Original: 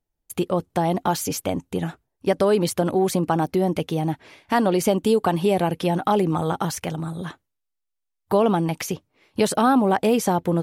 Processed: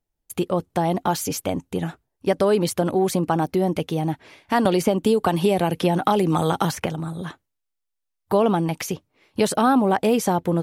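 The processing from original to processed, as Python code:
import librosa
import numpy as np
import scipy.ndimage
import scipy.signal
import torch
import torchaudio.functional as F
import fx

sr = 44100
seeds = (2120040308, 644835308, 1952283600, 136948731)

y = fx.band_squash(x, sr, depth_pct=100, at=(4.65, 6.86))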